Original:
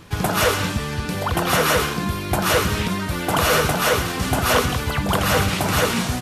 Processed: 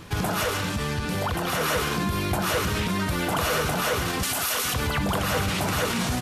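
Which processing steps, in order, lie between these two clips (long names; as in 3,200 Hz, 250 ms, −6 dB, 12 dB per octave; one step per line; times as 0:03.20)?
0:04.23–0:04.74: spectral tilt +3.5 dB per octave
brickwall limiter −18.5 dBFS, peak gain reduction 17 dB
0:00.43–0:01.61: tube saturation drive 11 dB, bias 0.4
level +1.5 dB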